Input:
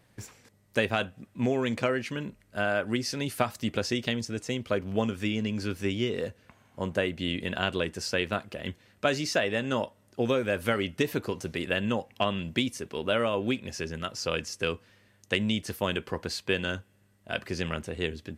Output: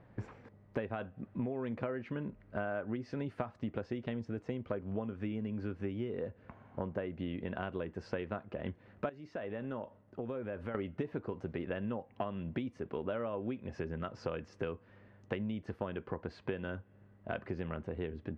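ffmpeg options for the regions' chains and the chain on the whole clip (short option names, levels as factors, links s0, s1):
-filter_complex "[0:a]asettb=1/sr,asplit=3[s0][s1][s2];[s0]atrim=end=9.094[s3];[s1]atrim=start=9.09:end=10.75,asetpts=PTS-STARTPTS,afade=t=in:d=0.004:c=qsin,afade=t=out:st=1.656:d=0.004:c=qsin,agate=range=0.0224:threshold=0.00112:ratio=3:release=100:detection=peak,acompressor=threshold=0.00316:ratio=2:attack=3.2:release=140:knee=1:detection=peak[s4];[s2]atrim=start=10.746[s5];[s3][s4]acrossfade=d=0.004:c1=hsin:c2=qsin[s6];[s6][s5]acrossfade=d=0.004:c1=qsin:c2=hsin,lowpass=1300,acompressor=threshold=0.01:ratio=6,volume=1.78"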